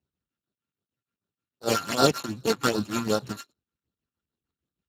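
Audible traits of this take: a buzz of ramps at a fixed pitch in blocks of 32 samples; phasing stages 12, 2.6 Hz, lowest notch 540–2400 Hz; tremolo triangle 6.5 Hz, depth 80%; Speex

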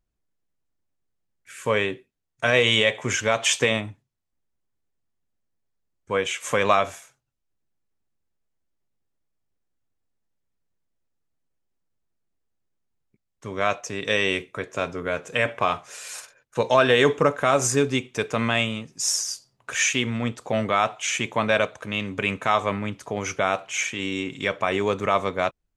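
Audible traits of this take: noise floor -78 dBFS; spectral tilt -3.0 dB/oct

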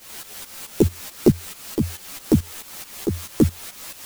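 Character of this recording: a quantiser's noise floor 6-bit, dither triangular; tremolo saw up 4.6 Hz, depth 80%; a shimmering, thickened sound

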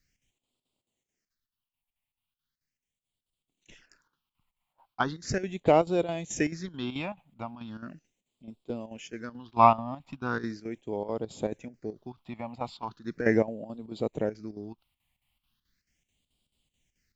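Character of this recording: phasing stages 6, 0.38 Hz, lowest notch 400–1700 Hz; chopped level 4.6 Hz, depth 65%, duty 75%

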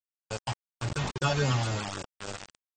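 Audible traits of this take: aliases and images of a low sample rate 2000 Hz, jitter 0%; phasing stages 12, 3.6 Hz, lowest notch 400–1100 Hz; a quantiser's noise floor 6-bit, dither none; AAC

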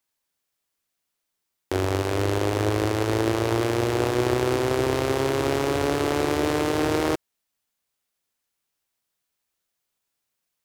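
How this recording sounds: noise floor -81 dBFS; spectral tilt -5.0 dB/oct

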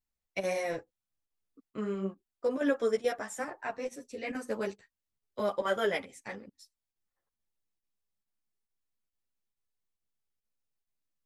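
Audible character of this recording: chopped level 2.3 Hz, depth 65%, duty 90%; a shimmering, thickened sound

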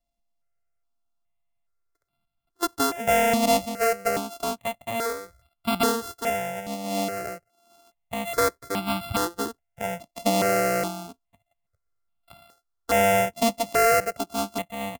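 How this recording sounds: a buzz of ramps at a fixed pitch in blocks of 64 samples; notches that jump at a steady rate 2.4 Hz 410–1800 Hz

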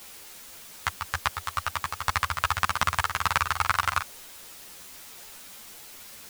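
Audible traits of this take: tremolo saw up 11 Hz, depth 75%; a quantiser's noise floor 8-bit, dither triangular; a shimmering, thickened sound

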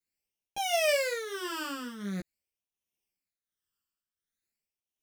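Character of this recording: phasing stages 12, 0.45 Hz, lowest notch 680–1500 Hz; tremolo triangle 1.4 Hz, depth 75%; a shimmering, thickened sound

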